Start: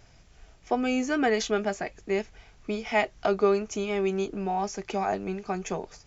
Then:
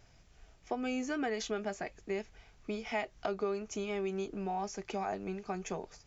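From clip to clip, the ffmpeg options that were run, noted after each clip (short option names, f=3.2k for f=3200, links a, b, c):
-af "acompressor=threshold=-26dB:ratio=3,volume=-6dB"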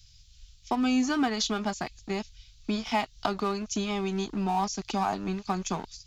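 -filter_complex "[0:a]equalizer=f=125:t=o:w=1:g=4,equalizer=f=250:t=o:w=1:g=7,equalizer=f=500:t=o:w=1:g=-11,equalizer=f=1k:t=o:w=1:g=11,equalizer=f=2k:t=o:w=1:g=-7,equalizer=f=4k:t=o:w=1:g=10,acrossover=split=100|2500[a][b][c];[b]aeval=exprs='sgn(val(0))*max(abs(val(0))-0.00447,0)':c=same[d];[a][d][c]amix=inputs=3:normalize=0,volume=7dB"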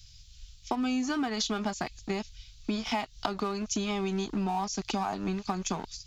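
-af "acompressor=threshold=-30dB:ratio=6,volume=3dB"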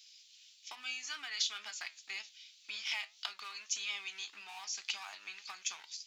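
-af "flanger=delay=9.1:depth=3.5:regen=74:speed=1.8:shape=triangular,highpass=f=2.3k:t=q:w=1.6,volume=1dB"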